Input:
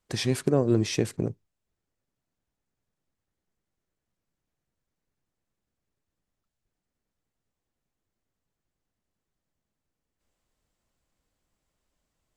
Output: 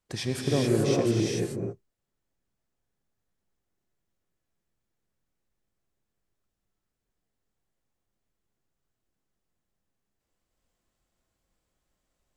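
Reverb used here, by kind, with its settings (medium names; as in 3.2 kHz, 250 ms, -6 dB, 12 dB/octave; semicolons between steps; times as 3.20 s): gated-style reverb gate 460 ms rising, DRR -2.5 dB; trim -4 dB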